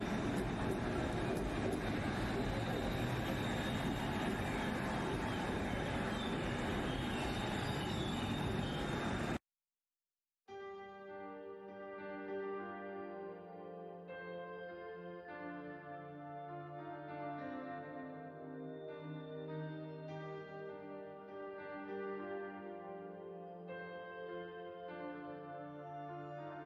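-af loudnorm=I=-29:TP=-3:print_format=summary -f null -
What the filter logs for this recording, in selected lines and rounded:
Input Integrated:    -42.6 LUFS
Input True Peak:     -24.6 dBTP
Input LRA:             9.5 LU
Input Threshold:     -52.7 LUFS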